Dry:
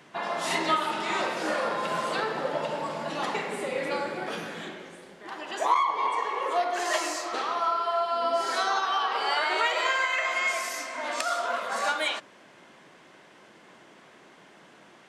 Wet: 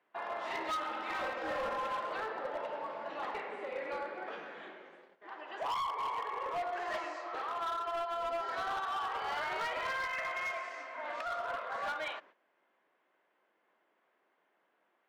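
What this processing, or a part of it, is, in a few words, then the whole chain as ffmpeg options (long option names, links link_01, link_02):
walkie-talkie: -filter_complex "[0:a]asettb=1/sr,asplit=3[link_01][link_02][link_03];[link_01]atrim=end=0.704[link_04];[link_02]atrim=start=0.7:end=1.99,asetpts=PTS-STARTPTS,afade=type=in:duration=0.004:curve=qsin,afade=type=out:start_time=1.286:duration=0.004:curve=qsin,aecho=1:1:3.8:0.76,atrim=end_sample=56889[link_05];[link_03]atrim=start=1.986[link_06];[link_04][link_05]acrossfade=duration=0.004:curve1=hsin:curve2=qsin[link_07];[link_07][link_06]acrossfade=duration=0.004:curve1=qsin:curve2=hsin,highpass=410,lowpass=2200,asoftclip=type=hard:threshold=-25dB,agate=range=-13dB:threshold=-50dB:ratio=16:detection=peak,volume=-7dB"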